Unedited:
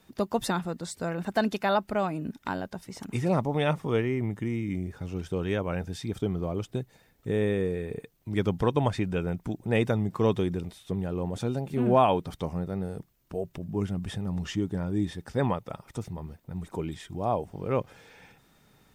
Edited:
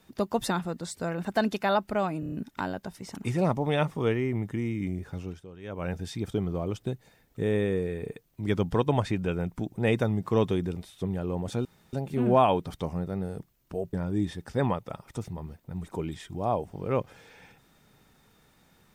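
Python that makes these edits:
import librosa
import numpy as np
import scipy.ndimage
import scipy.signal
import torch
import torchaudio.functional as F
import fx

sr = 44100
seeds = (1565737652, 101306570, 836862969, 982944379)

y = fx.edit(x, sr, fx.stutter(start_s=2.2, slice_s=0.03, count=5),
    fx.fade_down_up(start_s=5.05, length_s=0.74, db=-16.0, fade_s=0.28),
    fx.insert_room_tone(at_s=11.53, length_s=0.28),
    fx.cut(start_s=13.53, length_s=1.2), tone=tone)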